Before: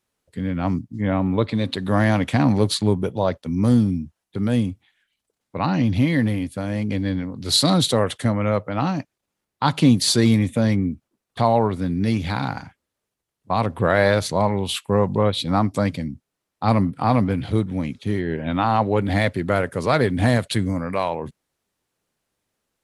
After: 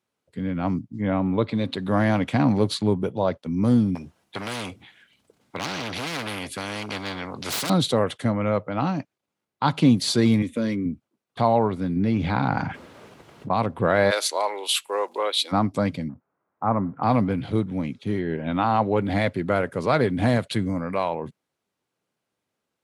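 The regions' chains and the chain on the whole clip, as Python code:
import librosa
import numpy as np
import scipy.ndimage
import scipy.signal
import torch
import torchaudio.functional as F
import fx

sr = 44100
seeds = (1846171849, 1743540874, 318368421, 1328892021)

y = fx.chain(x, sr, fx.clip_hard(threshold_db=-18.0),
    fx.low_shelf(hz=330.0, db=9.0),
    fx.spectral_comp(ratio=4.0), at=(3.95, 7.7))
y = fx.chain(y, sr, fx.peak_eq(hz=900.0, db=7.5, octaves=0.65),
    fx.fixed_phaser(hz=330.0, stages=4), at=(10.42, 10.86))
y = fx.chain(y, sr, fx.lowpass(hz=2200.0, slope=6),
    fx.env_flatten(amount_pct=70), at=(11.96, 13.53))
y = fx.steep_highpass(y, sr, hz=330.0, slope=36, at=(14.1, 15.51), fade=0.02)
y = fx.tilt_eq(y, sr, slope=4.0, at=(14.1, 15.51), fade=0.02)
y = fx.dmg_crackle(y, sr, seeds[0], per_s=84.0, level_db=-44.0, at=(14.1, 15.51), fade=0.02)
y = fx.chain(y, sr, fx.law_mismatch(coded='mu'),
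    fx.lowpass(hz=1400.0, slope=24),
    fx.tilt_shelf(db=-5.0, hz=810.0), at=(16.09, 17.03))
y = scipy.signal.sosfilt(scipy.signal.butter(2, 110.0, 'highpass', fs=sr, output='sos'), y)
y = fx.high_shelf(y, sr, hz=5200.0, db=-8.5)
y = fx.notch(y, sr, hz=1800.0, q=19.0)
y = F.gain(torch.from_numpy(y), -1.5).numpy()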